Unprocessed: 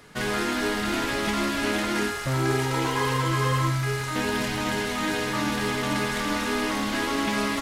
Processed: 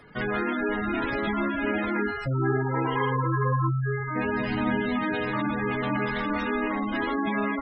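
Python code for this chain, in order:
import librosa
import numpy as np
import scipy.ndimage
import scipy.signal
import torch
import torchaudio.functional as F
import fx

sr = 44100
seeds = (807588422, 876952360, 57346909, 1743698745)

y = fx.spec_gate(x, sr, threshold_db=-15, keep='strong')
y = fx.peak_eq(y, sr, hz=240.0, db=8.5, octaves=0.4, at=(4.5, 4.99))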